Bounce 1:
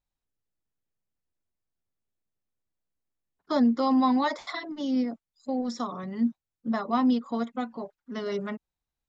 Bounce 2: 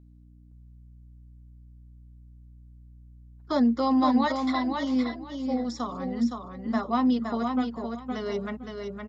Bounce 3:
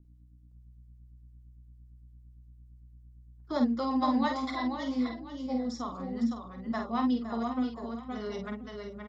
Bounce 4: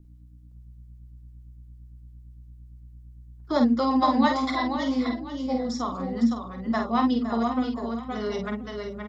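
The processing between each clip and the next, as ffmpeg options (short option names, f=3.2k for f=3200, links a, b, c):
-filter_complex "[0:a]aeval=exprs='val(0)+0.00282*(sin(2*PI*60*n/s)+sin(2*PI*2*60*n/s)/2+sin(2*PI*3*60*n/s)/3+sin(2*PI*4*60*n/s)/4+sin(2*PI*5*60*n/s)/5)':c=same,asplit=2[a][b];[b]aecho=0:1:515|1030|1545:0.562|0.112|0.0225[c];[a][c]amix=inputs=2:normalize=0"
-filter_complex "[0:a]acrossover=split=450[a][b];[a]aeval=exprs='val(0)*(1-0.7/2+0.7/2*cos(2*PI*8.8*n/s))':c=same[c];[b]aeval=exprs='val(0)*(1-0.7/2-0.7/2*cos(2*PI*8.8*n/s))':c=same[d];[c][d]amix=inputs=2:normalize=0,asplit=2[e][f];[f]adelay=48,volume=-5.5dB[g];[e][g]amix=inputs=2:normalize=0,volume=-2.5dB"
-af "bandreject=f=50:t=h:w=6,bandreject=f=100:t=h:w=6,bandreject=f=150:t=h:w=6,bandreject=f=200:t=h:w=6,bandreject=f=250:t=h:w=6,volume=7.5dB"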